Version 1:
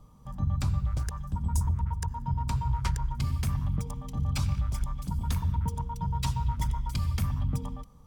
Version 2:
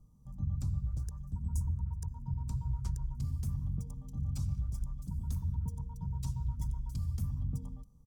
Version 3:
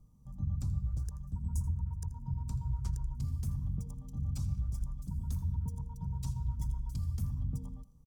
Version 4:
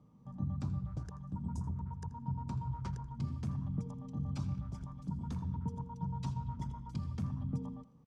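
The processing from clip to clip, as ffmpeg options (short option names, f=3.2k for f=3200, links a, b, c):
-af "firequalizer=gain_entry='entry(130,0);entry(550,-11);entry(2100,-21);entry(6100,-4)':delay=0.05:min_phase=1,volume=-6dB"
-af "aecho=1:1:82:0.141"
-af "highpass=200,lowpass=2.7k,volume=9dB"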